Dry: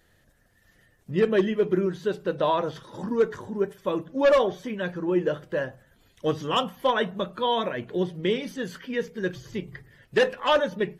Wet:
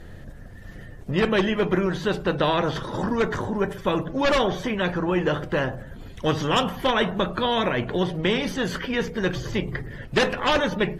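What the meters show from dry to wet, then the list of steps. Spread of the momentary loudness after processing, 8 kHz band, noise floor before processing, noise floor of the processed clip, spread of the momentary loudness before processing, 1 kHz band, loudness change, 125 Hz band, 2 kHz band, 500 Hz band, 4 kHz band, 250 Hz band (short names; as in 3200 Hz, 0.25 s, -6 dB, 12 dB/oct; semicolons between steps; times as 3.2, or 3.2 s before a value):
10 LU, n/a, -63 dBFS, -41 dBFS, 10 LU, +2.5 dB, +2.0 dB, +7.0 dB, +5.5 dB, 0.0 dB, +5.0 dB, +4.0 dB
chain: tilt -3 dB/oct; spectral compressor 2:1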